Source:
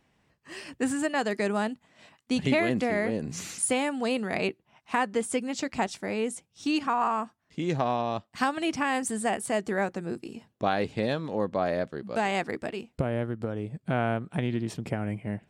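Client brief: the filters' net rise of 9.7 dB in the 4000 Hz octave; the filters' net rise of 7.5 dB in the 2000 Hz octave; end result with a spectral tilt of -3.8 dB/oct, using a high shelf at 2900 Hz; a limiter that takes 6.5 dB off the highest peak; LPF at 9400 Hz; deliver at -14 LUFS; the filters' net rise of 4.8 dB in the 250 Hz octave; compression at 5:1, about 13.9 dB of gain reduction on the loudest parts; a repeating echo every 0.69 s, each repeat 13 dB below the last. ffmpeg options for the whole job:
-af "lowpass=9.4k,equalizer=f=250:t=o:g=5.5,equalizer=f=2k:t=o:g=5,highshelf=f=2.9k:g=7,equalizer=f=4k:t=o:g=5.5,acompressor=threshold=-31dB:ratio=5,alimiter=limit=-24dB:level=0:latency=1,aecho=1:1:690|1380|2070:0.224|0.0493|0.0108,volume=21.5dB"

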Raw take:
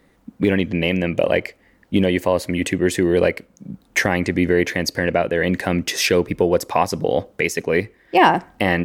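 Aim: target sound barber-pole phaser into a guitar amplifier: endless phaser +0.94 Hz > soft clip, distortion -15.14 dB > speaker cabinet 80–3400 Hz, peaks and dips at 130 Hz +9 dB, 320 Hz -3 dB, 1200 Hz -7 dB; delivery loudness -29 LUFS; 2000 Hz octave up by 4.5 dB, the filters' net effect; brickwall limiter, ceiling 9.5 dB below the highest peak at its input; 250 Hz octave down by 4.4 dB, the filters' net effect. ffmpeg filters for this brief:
-filter_complex "[0:a]equalizer=f=250:t=o:g=-6,equalizer=f=2k:t=o:g=6,alimiter=limit=-7.5dB:level=0:latency=1,asplit=2[a][b];[b]afreqshift=0.94[c];[a][c]amix=inputs=2:normalize=1,asoftclip=threshold=-15dB,highpass=80,equalizer=f=130:t=q:w=4:g=9,equalizer=f=320:t=q:w=4:g=-3,equalizer=f=1.2k:t=q:w=4:g=-7,lowpass=f=3.4k:w=0.5412,lowpass=f=3.4k:w=1.3066,volume=-2.5dB"

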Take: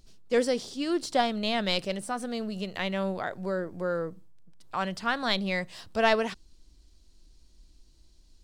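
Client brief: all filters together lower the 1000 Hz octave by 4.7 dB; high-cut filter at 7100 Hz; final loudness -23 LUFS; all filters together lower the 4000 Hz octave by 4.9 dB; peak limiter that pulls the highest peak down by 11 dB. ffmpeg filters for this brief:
-af "lowpass=7.1k,equalizer=f=1k:t=o:g=-7,equalizer=f=4k:t=o:g=-5.5,volume=13dB,alimiter=limit=-12.5dB:level=0:latency=1"

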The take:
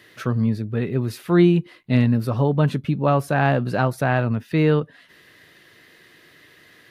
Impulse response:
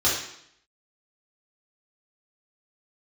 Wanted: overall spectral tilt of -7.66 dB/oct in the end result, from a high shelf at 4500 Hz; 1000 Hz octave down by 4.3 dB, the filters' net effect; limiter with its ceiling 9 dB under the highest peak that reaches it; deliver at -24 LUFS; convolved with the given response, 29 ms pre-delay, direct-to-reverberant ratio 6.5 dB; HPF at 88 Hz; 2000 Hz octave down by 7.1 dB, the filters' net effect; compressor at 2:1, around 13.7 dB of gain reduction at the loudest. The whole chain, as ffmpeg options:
-filter_complex "[0:a]highpass=88,equalizer=f=1k:t=o:g=-4.5,equalizer=f=2k:t=o:g=-6.5,highshelf=f=4.5k:g=-7.5,acompressor=threshold=-37dB:ratio=2,alimiter=level_in=4dB:limit=-24dB:level=0:latency=1,volume=-4dB,asplit=2[a][b];[1:a]atrim=start_sample=2205,adelay=29[c];[b][c]afir=irnorm=-1:irlink=0,volume=-21dB[d];[a][d]amix=inputs=2:normalize=0,volume=12.5dB"

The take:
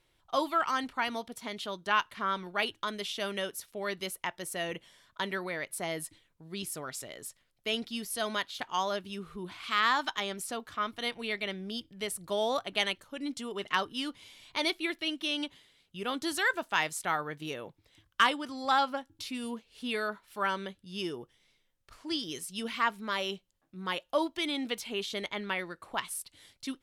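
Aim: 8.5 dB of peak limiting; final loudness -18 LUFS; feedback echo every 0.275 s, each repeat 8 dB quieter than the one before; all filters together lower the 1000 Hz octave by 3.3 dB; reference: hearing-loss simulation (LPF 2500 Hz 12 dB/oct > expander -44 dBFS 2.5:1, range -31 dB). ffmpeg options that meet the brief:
-af "equalizer=f=1k:t=o:g=-4,alimiter=limit=-22dB:level=0:latency=1,lowpass=2.5k,aecho=1:1:275|550|825|1100|1375:0.398|0.159|0.0637|0.0255|0.0102,agate=range=-31dB:threshold=-44dB:ratio=2.5,volume=19dB"

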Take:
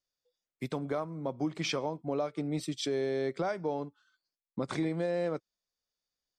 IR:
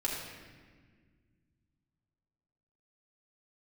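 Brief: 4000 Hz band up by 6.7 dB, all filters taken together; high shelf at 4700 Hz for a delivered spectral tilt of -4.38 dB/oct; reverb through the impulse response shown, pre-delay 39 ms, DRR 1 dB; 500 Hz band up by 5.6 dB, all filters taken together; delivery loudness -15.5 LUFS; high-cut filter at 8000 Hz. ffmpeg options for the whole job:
-filter_complex "[0:a]lowpass=8k,equalizer=f=500:t=o:g=6.5,equalizer=f=4k:t=o:g=6,highshelf=f=4.7k:g=5.5,asplit=2[a][b];[1:a]atrim=start_sample=2205,adelay=39[c];[b][c]afir=irnorm=-1:irlink=0,volume=-6dB[d];[a][d]amix=inputs=2:normalize=0,volume=11.5dB"

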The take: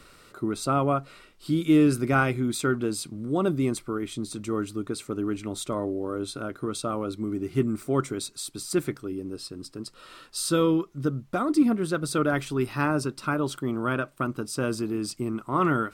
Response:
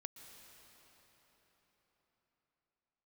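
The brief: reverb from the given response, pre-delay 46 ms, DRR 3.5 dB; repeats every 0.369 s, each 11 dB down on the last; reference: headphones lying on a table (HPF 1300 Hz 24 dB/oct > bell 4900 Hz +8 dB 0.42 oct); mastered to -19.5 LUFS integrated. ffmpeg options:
-filter_complex "[0:a]aecho=1:1:369|738|1107:0.282|0.0789|0.0221,asplit=2[a][b];[1:a]atrim=start_sample=2205,adelay=46[c];[b][c]afir=irnorm=-1:irlink=0,volume=1dB[d];[a][d]amix=inputs=2:normalize=0,highpass=f=1.3k:w=0.5412,highpass=f=1.3k:w=1.3066,equalizer=f=4.9k:t=o:w=0.42:g=8,volume=13dB"

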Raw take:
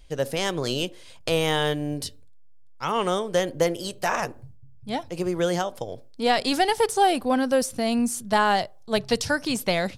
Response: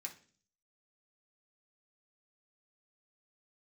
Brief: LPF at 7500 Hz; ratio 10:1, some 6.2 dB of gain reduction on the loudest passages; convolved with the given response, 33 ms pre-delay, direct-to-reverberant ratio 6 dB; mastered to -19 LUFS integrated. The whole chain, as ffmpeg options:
-filter_complex "[0:a]lowpass=7.5k,acompressor=threshold=-22dB:ratio=10,asplit=2[a][b];[1:a]atrim=start_sample=2205,adelay=33[c];[b][c]afir=irnorm=-1:irlink=0,volume=-3dB[d];[a][d]amix=inputs=2:normalize=0,volume=9.5dB"

